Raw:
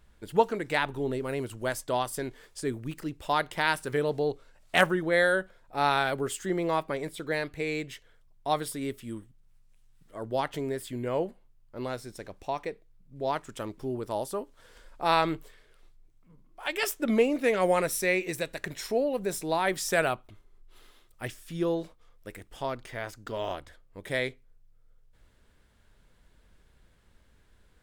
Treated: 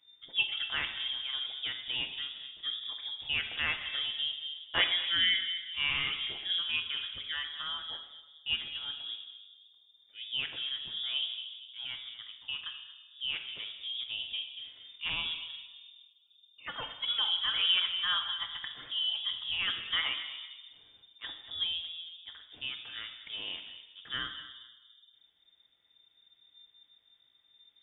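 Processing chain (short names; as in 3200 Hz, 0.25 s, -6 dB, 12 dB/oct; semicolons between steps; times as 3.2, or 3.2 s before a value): resonator 59 Hz, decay 0.2 s, harmonics all, mix 50%; 15.08–16.93 envelope phaser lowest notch 250 Hz, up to 1700 Hz, full sweep at -28.5 dBFS; on a send: darkening echo 0.231 s, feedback 42%, low-pass 1000 Hz, level -10.5 dB; on the sum: shoebox room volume 1400 m³, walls mixed, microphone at 0.99 m; inverted band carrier 3600 Hz; mismatched tape noise reduction decoder only; gain -4.5 dB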